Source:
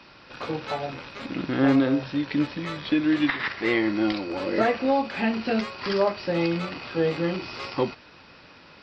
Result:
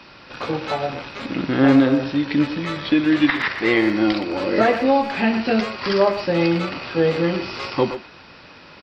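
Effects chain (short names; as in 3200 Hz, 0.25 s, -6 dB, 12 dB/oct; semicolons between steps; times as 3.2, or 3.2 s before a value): speakerphone echo 0.12 s, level -9 dB; gain +5.5 dB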